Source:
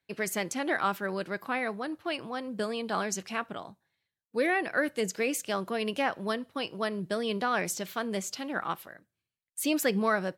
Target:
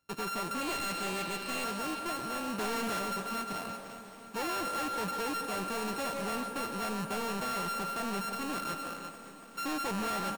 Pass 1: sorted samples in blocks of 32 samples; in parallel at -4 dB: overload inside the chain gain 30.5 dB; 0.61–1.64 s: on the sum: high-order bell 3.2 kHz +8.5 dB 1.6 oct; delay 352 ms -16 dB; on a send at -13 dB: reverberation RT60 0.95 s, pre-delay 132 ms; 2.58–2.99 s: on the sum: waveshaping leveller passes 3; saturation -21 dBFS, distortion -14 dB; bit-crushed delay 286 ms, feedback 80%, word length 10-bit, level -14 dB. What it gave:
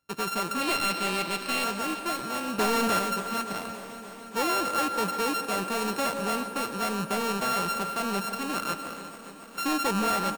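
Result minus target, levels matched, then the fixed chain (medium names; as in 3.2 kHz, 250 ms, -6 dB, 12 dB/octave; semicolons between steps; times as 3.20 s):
saturation: distortion -9 dB
sorted samples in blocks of 32 samples; in parallel at -4 dB: overload inside the chain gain 30.5 dB; 0.61–1.64 s: on the sum: high-order bell 3.2 kHz +8.5 dB 1.6 oct; delay 352 ms -16 dB; on a send at -13 dB: reverberation RT60 0.95 s, pre-delay 132 ms; 2.58–2.99 s: on the sum: waveshaping leveller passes 3; saturation -32.5 dBFS, distortion -6 dB; bit-crushed delay 286 ms, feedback 80%, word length 10-bit, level -14 dB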